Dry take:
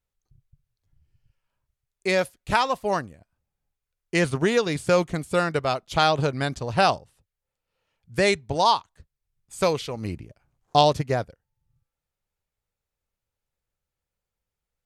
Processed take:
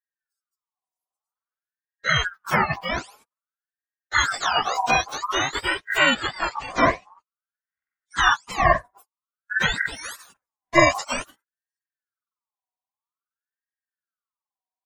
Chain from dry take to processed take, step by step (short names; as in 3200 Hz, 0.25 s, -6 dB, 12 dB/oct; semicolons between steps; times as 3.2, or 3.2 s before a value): spectrum mirrored in octaves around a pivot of 930 Hz; 6.14–8.51 LPF 4200 Hz -> 8600 Hz 24 dB/oct; gate -55 dBFS, range -21 dB; low shelf 210 Hz +5.5 dB; ring modulator with a swept carrier 1300 Hz, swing 35%, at 0.51 Hz; gain +3.5 dB